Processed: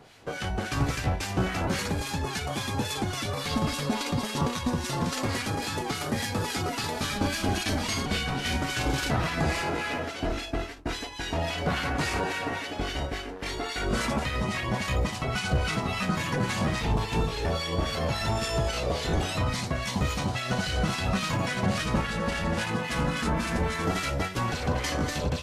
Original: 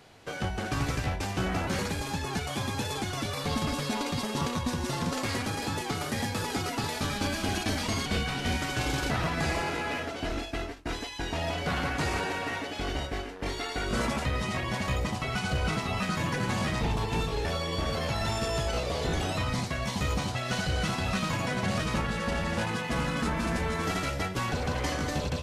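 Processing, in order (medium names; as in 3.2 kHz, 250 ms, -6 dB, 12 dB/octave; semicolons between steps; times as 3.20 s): harmonic tremolo 3.6 Hz, depth 70%, crossover 1.3 kHz; trim +5 dB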